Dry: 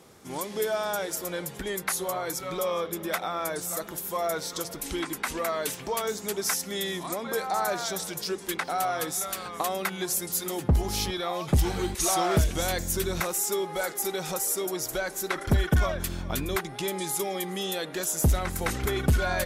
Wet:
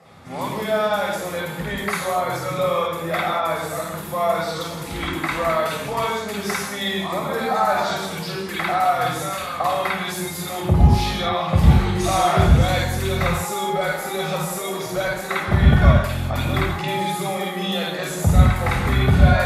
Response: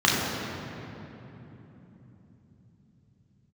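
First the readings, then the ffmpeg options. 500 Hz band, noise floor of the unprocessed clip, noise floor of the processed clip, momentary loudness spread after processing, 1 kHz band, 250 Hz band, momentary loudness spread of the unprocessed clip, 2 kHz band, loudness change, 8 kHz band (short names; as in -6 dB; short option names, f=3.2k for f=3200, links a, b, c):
+6.5 dB, -41 dBFS, -30 dBFS, 11 LU, +9.5 dB, +8.5 dB, 7 LU, +8.5 dB, +7.5 dB, -3.0 dB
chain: -filter_complex "[0:a]equalizer=f=420:w=2.3:g=-3,asplit=2[a][b];[b]asoftclip=type=tanh:threshold=-24.5dB,volume=-10dB[c];[a][c]amix=inputs=2:normalize=0[d];[1:a]atrim=start_sample=2205,afade=t=out:st=0.2:d=0.01,atrim=end_sample=9261,asetrate=27342,aresample=44100[e];[d][e]afir=irnorm=-1:irlink=0,volume=-14.5dB"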